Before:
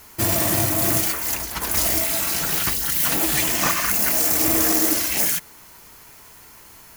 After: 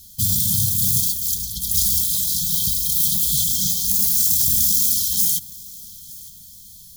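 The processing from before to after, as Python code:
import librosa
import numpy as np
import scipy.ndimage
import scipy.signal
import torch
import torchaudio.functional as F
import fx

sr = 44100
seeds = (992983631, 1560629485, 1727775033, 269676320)

p1 = fx.brickwall_bandstop(x, sr, low_hz=230.0, high_hz=3100.0)
p2 = fx.peak_eq(p1, sr, hz=510.0, db=-3.5, octaves=2.1)
p3 = p2 + fx.echo_feedback(p2, sr, ms=915, feedback_pct=35, wet_db=-21.5, dry=0)
y = p3 * librosa.db_to_amplitude(2.5)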